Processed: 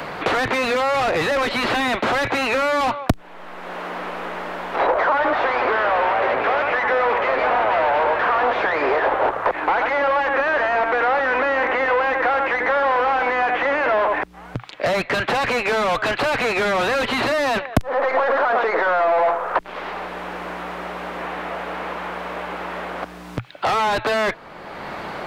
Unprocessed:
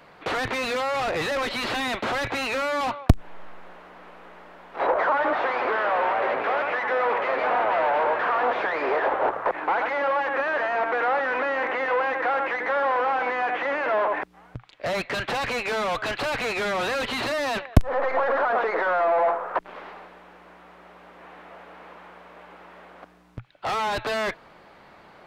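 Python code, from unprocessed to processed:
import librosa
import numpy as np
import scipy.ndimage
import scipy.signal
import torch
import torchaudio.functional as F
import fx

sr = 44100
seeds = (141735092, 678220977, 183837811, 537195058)

y = fx.band_squash(x, sr, depth_pct=70)
y = y * 10.0 ** (4.5 / 20.0)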